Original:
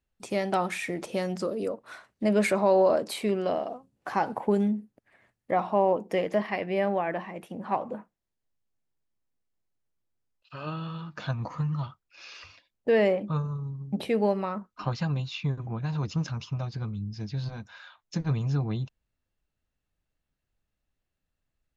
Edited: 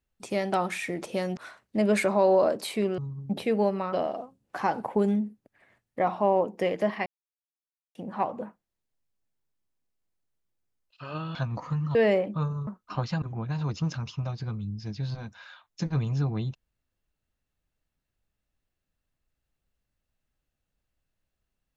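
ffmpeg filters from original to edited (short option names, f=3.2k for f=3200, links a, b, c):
-filter_complex "[0:a]asplit=10[a][b][c][d][e][f][g][h][i][j];[a]atrim=end=1.372[k];[b]atrim=start=1.838:end=3.452[l];[c]atrim=start=13.608:end=14.562[m];[d]atrim=start=3.448:end=6.58,asetpts=PTS-STARTPTS,afade=t=out:st=3.128:d=0.004:c=hsin[n];[e]atrim=start=6.58:end=7.47,asetpts=PTS-STARTPTS,volume=0[o];[f]atrim=start=7.47:end=10.872,asetpts=PTS-STARTPTS,afade=t=in:d=0.004:c=hsin[p];[g]atrim=start=11.228:end=11.832[q];[h]atrim=start=12.888:end=13.612[r];[i]atrim=start=14.558:end=15.112[s];[j]atrim=start=15.558[t];[k][l]acrossfade=d=0.004:c1=hsin:c2=hsin[u];[u][m]acrossfade=d=0.004:c1=hsin:c2=hsin[v];[n][o][p]concat=n=3:v=0:a=1[w];[v][w]acrossfade=d=0.004:c1=hsin:c2=hsin[x];[x][q]acrossfade=d=0.004:c1=hsin:c2=hsin[y];[y][r]acrossfade=d=0.004:c1=hsin:c2=hsin[z];[z][s]acrossfade=d=0.004:c1=hsin:c2=hsin[aa];[aa][t]acrossfade=d=0.004:c1=hsin:c2=hsin"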